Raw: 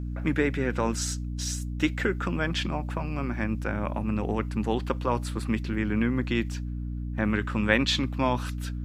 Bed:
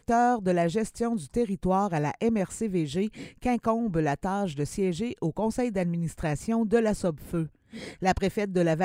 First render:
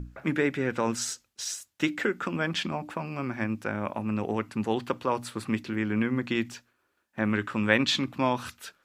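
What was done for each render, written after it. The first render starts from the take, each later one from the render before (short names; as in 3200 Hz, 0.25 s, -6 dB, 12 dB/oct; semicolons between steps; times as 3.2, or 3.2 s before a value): notches 60/120/180/240/300 Hz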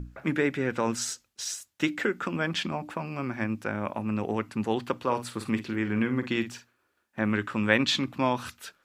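4.99–7.2 doubler 49 ms -11 dB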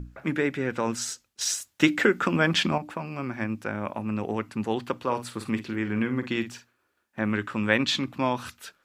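1.41–2.78 gain +6.5 dB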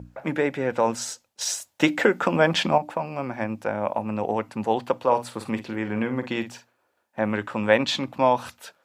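HPF 82 Hz; band shelf 680 Hz +9 dB 1.2 oct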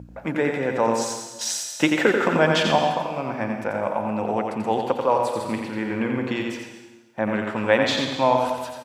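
echo 88 ms -5 dB; plate-style reverb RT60 1.1 s, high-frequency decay 1×, pre-delay 0.105 s, DRR 6.5 dB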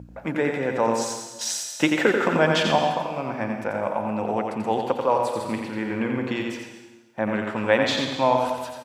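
gain -1 dB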